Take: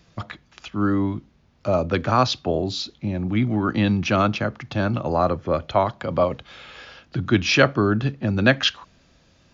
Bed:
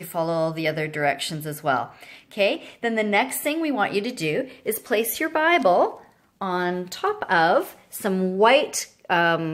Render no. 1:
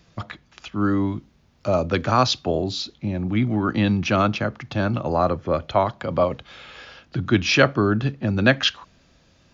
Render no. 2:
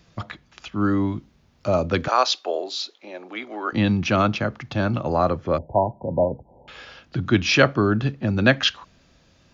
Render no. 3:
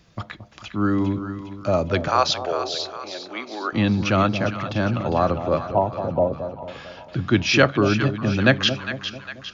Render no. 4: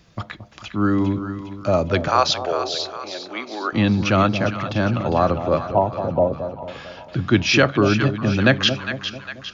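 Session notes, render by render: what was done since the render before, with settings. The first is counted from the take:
0.84–2.64 s: treble shelf 5.4 kHz +7 dB
2.08–3.73 s: high-pass 420 Hz 24 dB/octave; 5.58–6.68 s: brick-wall FIR low-pass 1 kHz
two-band feedback delay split 870 Hz, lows 223 ms, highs 405 ms, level -9.5 dB
trim +2 dB; peak limiter -3 dBFS, peak gain reduction 3 dB

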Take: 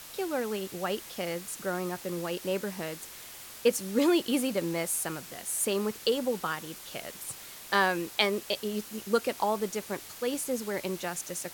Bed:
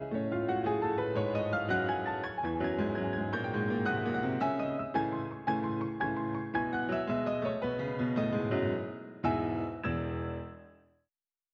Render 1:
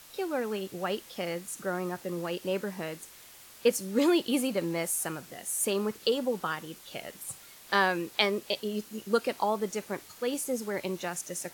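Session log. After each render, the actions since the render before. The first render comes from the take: noise print and reduce 6 dB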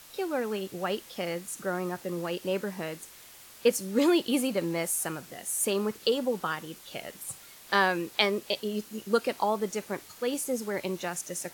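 trim +1 dB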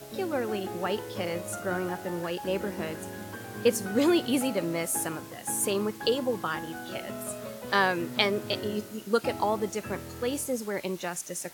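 add bed -7 dB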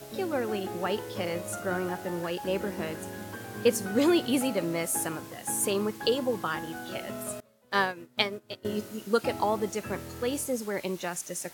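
7.40–8.65 s: upward expansion 2.5:1, over -37 dBFS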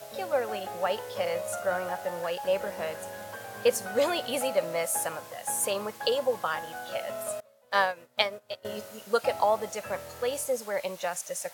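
resonant low shelf 440 Hz -8 dB, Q 3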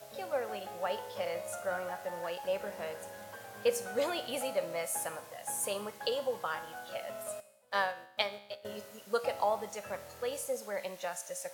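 feedback comb 68 Hz, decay 0.78 s, harmonics all, mix 60%

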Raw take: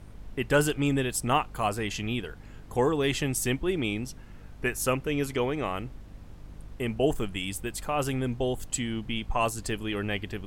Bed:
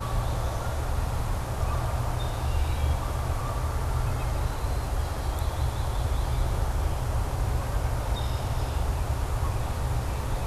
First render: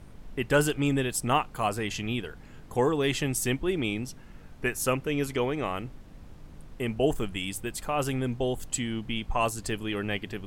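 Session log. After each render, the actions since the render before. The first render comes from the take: de-hum 50 Hz, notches 2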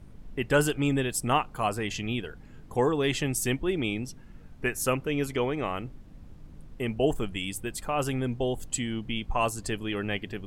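noise reduction 6 dB, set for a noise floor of -49 dBFS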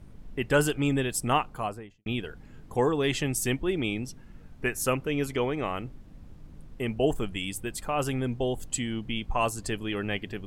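1.40–2.06 s: studio fade out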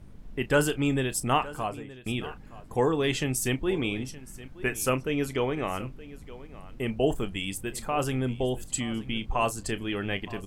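doubling 31 ms -14 dB; delay 920 ms -18 dB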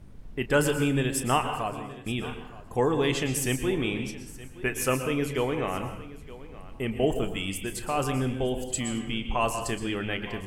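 plate-style reverb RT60 0.69 s, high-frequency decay 0.75×, pre-delay 105 ms, DRR 7.5 dB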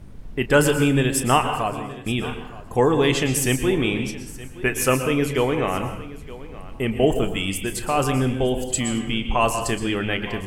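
trim +6.5 dB

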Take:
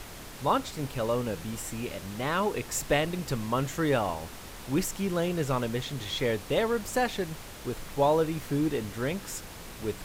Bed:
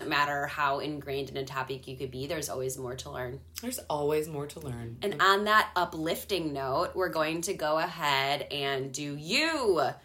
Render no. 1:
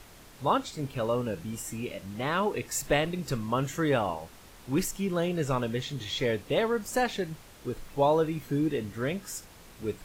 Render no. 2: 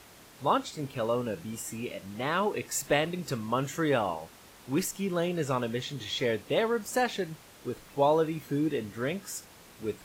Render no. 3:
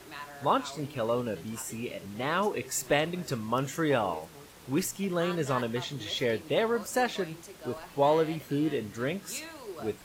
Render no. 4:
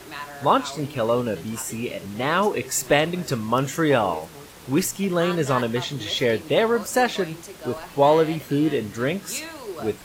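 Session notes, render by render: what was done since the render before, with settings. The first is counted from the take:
noise print and reduce 8 dB
high-pass 140 Hz 6 dB/octave
add bed -16 dB
trim +7.5 dB

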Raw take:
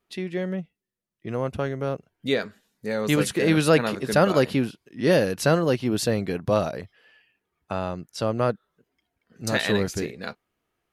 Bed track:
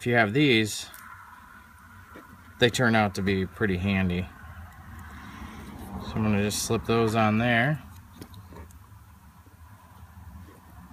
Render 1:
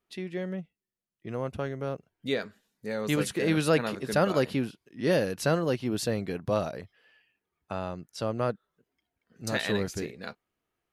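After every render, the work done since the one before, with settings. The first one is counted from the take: trim -5.5 dB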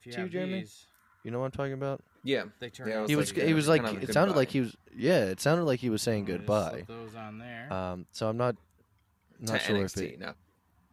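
add bed track -20 dB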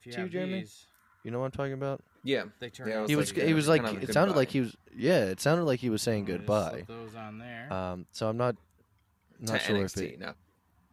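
no audible change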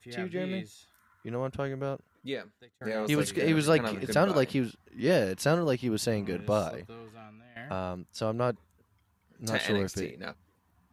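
1.85–2.81 s: fade out; 6.59–7.56 s: fade out linear, to -15.5 dB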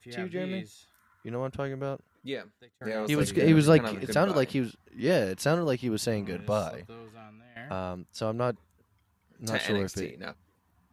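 3.21–3.79 s: bass shelf 410 Hz +8.5 dB; 6.28–6.86 s: peaking EQ 330 Hz -11.5 dB 0.35 oct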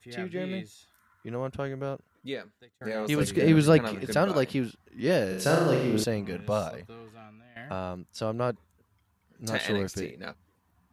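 5.28–6.04 s: flutter echo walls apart 6.4 m, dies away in 0.78 s

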